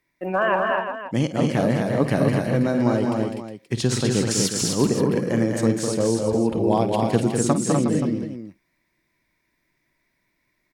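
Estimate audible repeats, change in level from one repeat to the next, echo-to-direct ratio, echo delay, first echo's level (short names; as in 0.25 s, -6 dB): 5, no steady repeat, 0.0 dB, 53 ms, -13.5 dB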